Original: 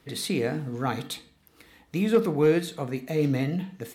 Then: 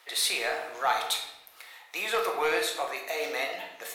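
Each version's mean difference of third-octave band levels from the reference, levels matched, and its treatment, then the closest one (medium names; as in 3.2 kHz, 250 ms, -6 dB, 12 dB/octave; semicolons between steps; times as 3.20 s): 13.0 dB: high-pass 660 Hz 24 dB/octave; in parallel at -5.5 dB: saturation -29 dBFS, distortion -12 dB; on the sum: simulated room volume 350 m³, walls mixed, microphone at 0.94 m; trim +2 dB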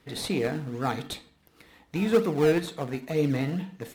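2.5 dB: bass shelf 480 Hz -4.5 dB; in parallel at -9 dB: decimation with a swept rate 27×, swing 100% 2.1 Hz; on the sum: treble shelf 6.3 kHz -5.5 dB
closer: second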